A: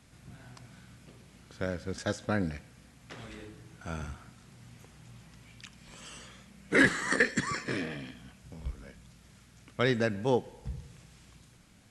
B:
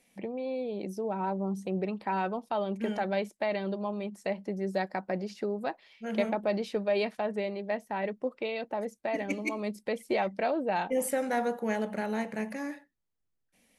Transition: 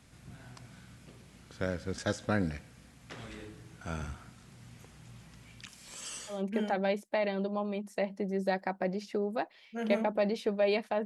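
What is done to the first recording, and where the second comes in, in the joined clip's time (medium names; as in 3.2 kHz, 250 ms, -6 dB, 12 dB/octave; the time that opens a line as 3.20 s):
A
5.68–6.43 s: tone controls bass -8 dB, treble +10 dB
6.35 s: go over to B from 2.63 s, crossfade 0.16 s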